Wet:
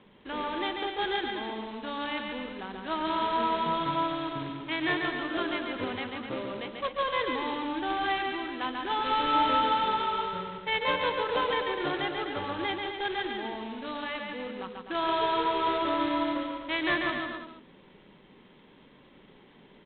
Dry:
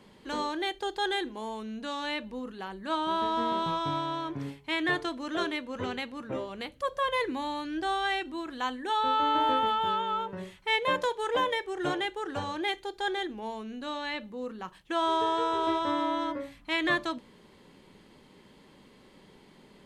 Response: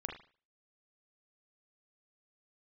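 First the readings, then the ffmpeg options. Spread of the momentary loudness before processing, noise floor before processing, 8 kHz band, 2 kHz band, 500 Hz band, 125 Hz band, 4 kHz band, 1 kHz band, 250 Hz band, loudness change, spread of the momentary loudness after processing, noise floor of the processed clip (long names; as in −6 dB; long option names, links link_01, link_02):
11 LU, −57 dBFS, below −30 dB, +1.0 dB, +0.5 dB, 0.0 dB, +0.5 dB, +0.5 dB, +0.5 dB, +0.5 dB, 10 LU, −56 dBFS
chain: -af "equalizer=frequency=78:width=3:gain=-9,aresample=8000,acrusher=bits=2:mode=log:mix=0:aa=0.000001,aresample=44100,aecho=1:1:140|252|341.6|413.3|470.6:0.631|0.398|0.251|0.158|0.1,volume=-2dB"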